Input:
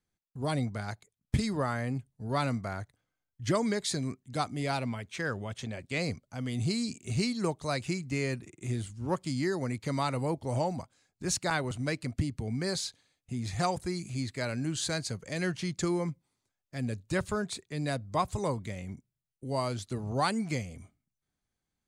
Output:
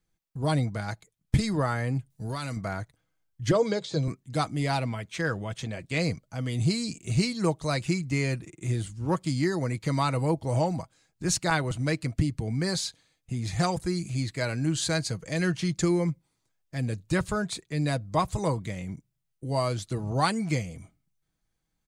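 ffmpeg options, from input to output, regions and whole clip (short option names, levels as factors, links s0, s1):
-filter_complex "[0:a]asettb=1/sr,asplit=3[s0][s1][s2];[s0]atrim=end=2.104[s3];[s1]atrim=start=2.1:end=2.57,asetpts=PTS-STARTPTS,afade=t=in:d=0.004:c=qsin,afade=t=out:st=0.466:d=0.004:c=qsin,highshelf=f=2700:g=11.5,acompressor=threshold=0.0251:ratio=12:attack=3.2:release=140:knee=1:detection=peak[s4];[s2]atrim=start=2.566[s5];[s3][s4]acrossfade=d=0.004:c1=hsin:c2=qsin[s6];[s6][s5]acrossfade=d=0.004:c1=qsin:c2=hsin,asettb=1/sr,asplit=3[s7][s8][s9];[s7]atrim=end=3.514[s10];[s8]atrim=start=3.51:end=4.08,asetpts=PTS-STARTPTS,afade=t=in:d=0.004:c=qsin,afade=t=out:st=0.566:d=0.004:c=qsin,bandreject=f=180:w=6,deesser=1,highpass=110,equalizer=f=140:t=q:w=4:g=5,equalizer=f=240:t=q:w=4:g=-5,equalizer=f=500:t=q:w=4:g=10,equalizer=f=1900:t=q:w=4:g=-9,equalizer=f=3400:t=q:w=4:g=5,lowpass=f=7100:w=0.5412,lowpass=f=7100:w=1.3066[s11];[s9]atrim=start=4.076[s12];[s10][s11]acrossfade=d=0.004:c1=hsin:c2=qsin[s13];[s13][s12]acrossfade=d=0.004:c1=qsin:c2=hsin,lowshelf=f=69:g=8,aecho=1:1:6.2:0.38,volume=1.41"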